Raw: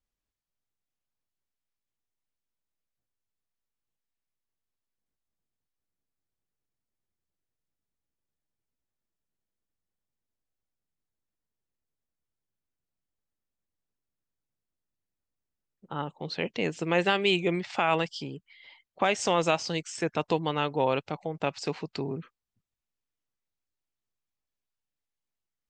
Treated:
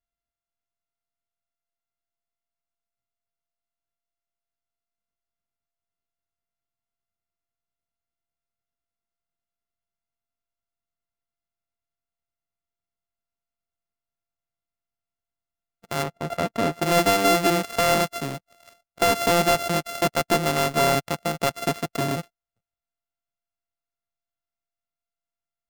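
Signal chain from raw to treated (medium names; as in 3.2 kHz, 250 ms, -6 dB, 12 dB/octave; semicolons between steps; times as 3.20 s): sorted samples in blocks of 64 samples; 16.03–16.82 s: treble shelf 3.1 kHz -11.5 dB; waveshaping leveller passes 2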